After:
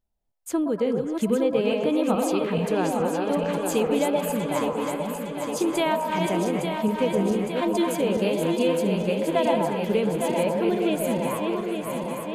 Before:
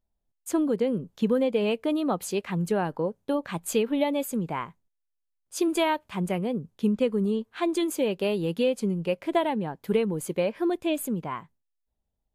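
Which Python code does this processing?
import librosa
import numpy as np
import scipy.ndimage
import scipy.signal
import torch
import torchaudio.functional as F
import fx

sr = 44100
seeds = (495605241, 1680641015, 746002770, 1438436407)

y = fx.reverse_delay_fb(x, sr, ms=430, feedback_pct=79, wet_db=-5.0)
y = fx.echo_stepped(y, sr, ms=119, hz=700.0, octaves=0.7, feedback_pct=70, wet_db=-1.5)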